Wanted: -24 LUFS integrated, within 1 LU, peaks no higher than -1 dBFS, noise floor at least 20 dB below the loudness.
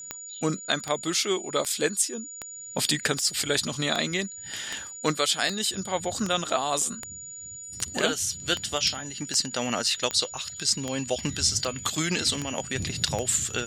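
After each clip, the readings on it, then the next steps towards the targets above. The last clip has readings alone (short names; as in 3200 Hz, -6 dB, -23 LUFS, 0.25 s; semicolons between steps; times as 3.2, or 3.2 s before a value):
clicks 18; steady tone 6900 Hz; tone level -38 dBFS; loudness -26.5 LUFS; peak -8.5 dBFS; loudness target -24.0 LUFS
-> de-click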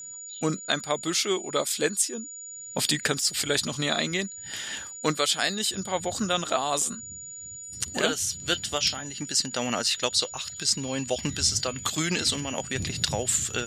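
clicks 0; steady tone 6900 Hz; tone level -38 dBFS
-> notch 6900 Hz, Q 30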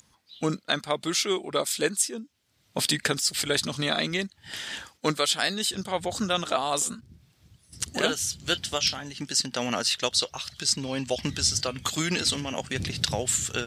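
steady tone none; loudness -27.0 LUFS; peak -8.5 dBFS; loudness target -24.0 LUFS
-> gain +3 dB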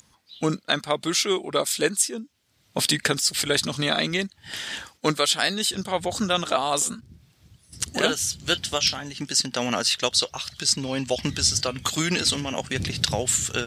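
loudness -24.0 LUFS; peak -5.5 dBFS; noise floor -63 dBFS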